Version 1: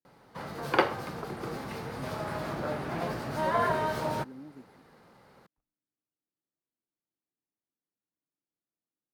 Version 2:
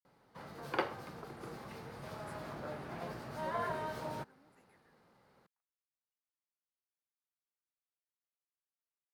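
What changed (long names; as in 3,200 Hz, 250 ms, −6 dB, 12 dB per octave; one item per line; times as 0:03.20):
speech: add high-pass filter 1,100 Hz
background −10.0 dB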